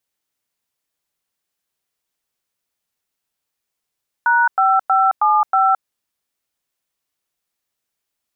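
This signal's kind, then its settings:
touch tones "#5575", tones 217 ms, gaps 101 ms, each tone −14 dBFS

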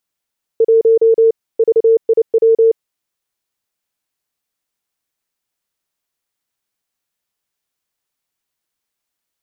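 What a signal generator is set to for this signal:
Morse code "1 VIW" 29 words per minute 452 Hz −6.5 dBFS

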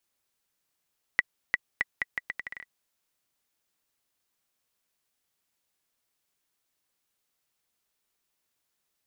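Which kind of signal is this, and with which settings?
bouncing ball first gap 0.35 s, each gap 0.77, 1,960 Hz, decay 29 ms −8 dBFS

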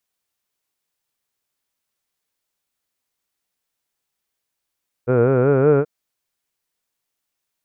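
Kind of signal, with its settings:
vowel from formants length 0.78 s, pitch 119 Hz, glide +4 semitones, vibrato depth 1.1 semitones, F1 460 Hz, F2 1,400 Hz, F3 2,400 Hz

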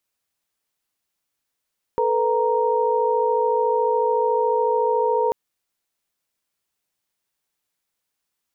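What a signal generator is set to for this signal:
held notes A4/B4/A#5 sine, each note −21.5 dBFS 3.34 s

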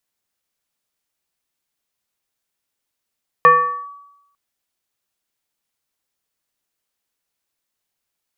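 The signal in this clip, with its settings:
two-operator FM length 0.90 s, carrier 1,140 Hz, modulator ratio 0.57, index 0.74, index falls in 0.43 s linear, decay 0.90 s, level −4 dB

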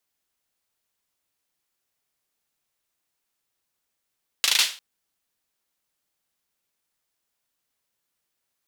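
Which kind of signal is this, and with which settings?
synth clap length 0.35 s, bursts 5, apart 37 ms, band 3,400 Hz, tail 0.35 s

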